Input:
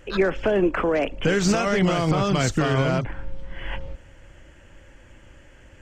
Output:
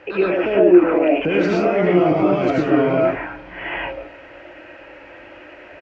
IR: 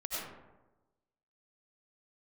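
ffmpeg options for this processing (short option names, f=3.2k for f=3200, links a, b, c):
-filter_complex "[0:a]firequalizer=gain_entry='entry(180,0);entry(290,8);entry(1200,10);entry(3500,-4)':delay=0.05:min_phase=1,acrossover=split=380[a][b];[b]alimiter=limit=-23.5dB:level=0:latency=1:release=14[c];[a][c]amix=inputs=2:normalize=0,acrusher=bits=9:mix=0:aa=0.000001,highpass=120,equalizer=f=130:t=q:w=4:g=-5,equalizer=f=230:t=q:w=4:g=-6,equalizer=f=780:t=q:w=4:g=4,equalizer=f=1.2k:t=q:w=4:g=-3,equalizer=f=2.5k:t=q:w=4:g=10,lowpass=f=4.8k:w=0.5412,lowpass=f=4.8k:w=1.3066[d];[1:a]atrim=start_sample=2205,atrim=end_sample=6615[e];[d][e]afir=irnorm=-1:irlink=0,volume=3.5dB"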